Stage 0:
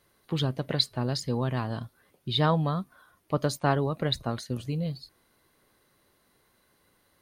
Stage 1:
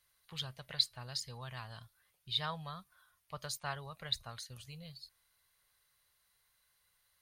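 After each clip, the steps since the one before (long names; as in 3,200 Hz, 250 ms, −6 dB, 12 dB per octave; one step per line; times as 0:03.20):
guitar amp tone stack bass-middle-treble 10-0-10
level −3.5 dB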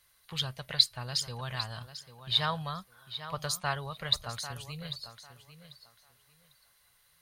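tape delay 796 ms, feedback 23%, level −11 dB, low-pass 6,000 Hz
level +8 dB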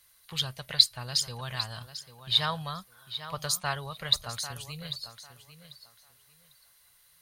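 high-shelf EQ 4,000 Hz +6.5 dB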